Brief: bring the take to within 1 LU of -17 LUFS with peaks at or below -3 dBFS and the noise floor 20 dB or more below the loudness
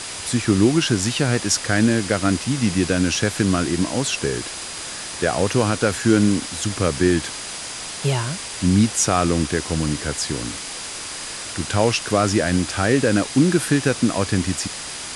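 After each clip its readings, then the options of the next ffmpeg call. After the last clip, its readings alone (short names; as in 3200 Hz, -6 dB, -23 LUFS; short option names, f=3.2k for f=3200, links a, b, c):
steady tone 4900 Hz; tone level -40 dBFS; noise floor -32 dBFS; noise floor target -41 dBFS; loudness -20.5 LUFS; peak -2.5 dBFS; loudness target -17.0 LUFS
-> -af "bandreject=f=4.9k:w=30"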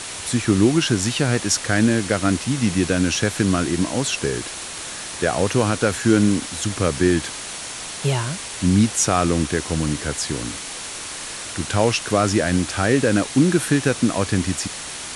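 steady tone none; noise floor -32 dBFS; noise floor target -41 dBFS
-> -af "afftdn=nr=9:nf=-32"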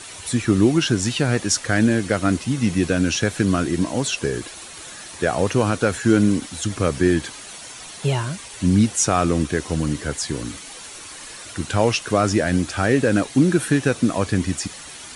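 noise floor -38 dBFS; noise floor target -41 dBFS
-> -af "afftdn=nr=6:nf=-38"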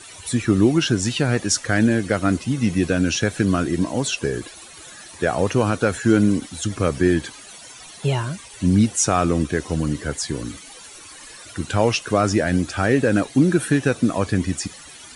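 noise floor -42 dBFS; loudness -20.5 LUFS; peak -4.0 dBFS; loudness target -17.0 LUFS
-> -af "volume=3.5dB,alimiter=limit=-3dB:level=0:latency=1"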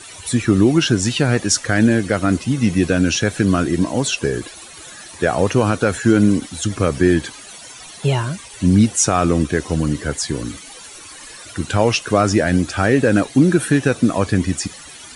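loudness -17.5 LUFS; peak -3.0 dBFS; noise floor -38 dBFS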